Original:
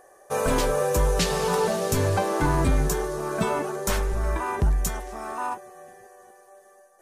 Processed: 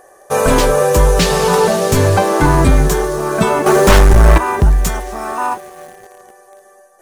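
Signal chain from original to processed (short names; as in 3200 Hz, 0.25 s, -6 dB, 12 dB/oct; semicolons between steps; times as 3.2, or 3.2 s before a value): in parallel at -9 dB: bit-crush 7-bit; 3.66–4.38 on the sum: sample leveller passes 3; slew limiter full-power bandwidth 400 Hz; gain +8.5 dB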